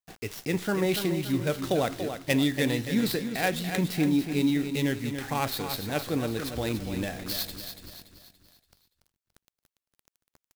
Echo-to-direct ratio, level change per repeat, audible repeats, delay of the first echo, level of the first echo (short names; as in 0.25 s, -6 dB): -7.5 dB, -7.0 dB, 4, 0.286 s, -8.5 dB